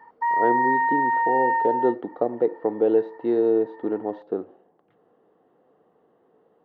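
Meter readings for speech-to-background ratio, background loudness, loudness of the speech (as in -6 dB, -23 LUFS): -2.5 dB, -22.5 LUFS, -25.0 LUFS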